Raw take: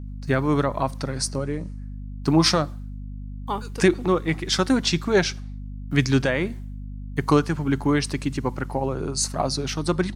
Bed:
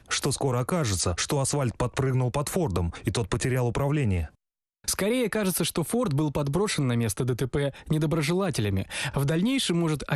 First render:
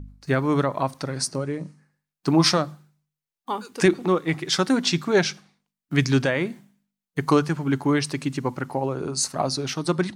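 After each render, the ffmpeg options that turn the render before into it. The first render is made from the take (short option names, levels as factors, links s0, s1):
-af "bandreject=f=50:t=h:w=4,bandreject=f=100:t=h:w=4,bandreject=f=150:t=h:w=4,bandreject=f=200:t=h:w=4,bandreject=f=250:t=h:w=4"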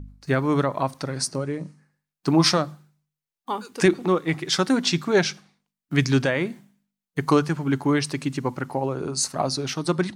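-af anull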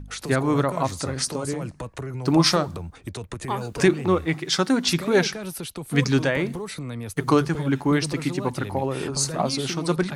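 -filter_complex "[1:a]volume=0.422[s0];[0:a][s0]amix=inputs=2:normalize=0"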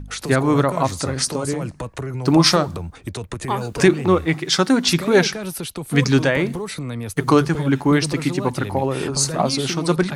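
-af "volume=1.68,alimiter=limit=0.708:level=0:latency=1"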